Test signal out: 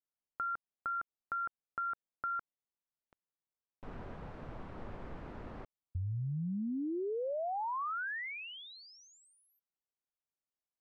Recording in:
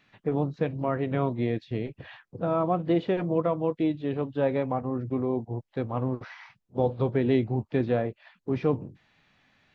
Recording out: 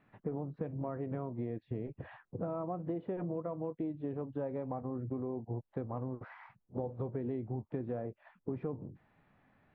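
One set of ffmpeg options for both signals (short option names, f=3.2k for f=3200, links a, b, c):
-filter_complex "[0:a]lowpass=1.2k,asplit=2[a][b];[b]alimiter=limit=-23dB:level=0:latency=1:release=113,volume=-3dB[c];[a][c]amix=inputs=2:normalize=0,acompressor=threshold=-30dB:ratio=6,volume=-4.5dB"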